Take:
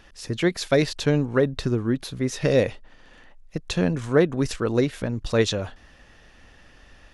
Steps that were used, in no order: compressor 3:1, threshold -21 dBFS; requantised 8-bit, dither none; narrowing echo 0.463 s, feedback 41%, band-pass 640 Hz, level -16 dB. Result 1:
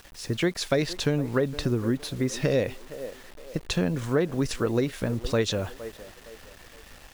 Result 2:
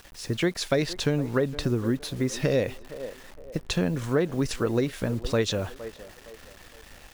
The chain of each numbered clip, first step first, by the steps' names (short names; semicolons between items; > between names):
narrowing echo > requantised > compressor; requantised > narrowing echo > compressor